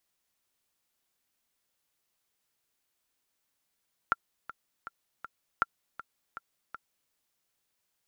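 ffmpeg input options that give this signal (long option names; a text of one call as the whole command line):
ffmpeg -f lavfi -i "aevalsrc='pow(10,(-11.5-16*gte(mod(t,4*60/160),60/160))/20)*sin(2*PI*1370*mod(t,60/160))*exp(-6.91*mod(t,60/160)/0.03)':duration=3:sample_rate=44100" out.wav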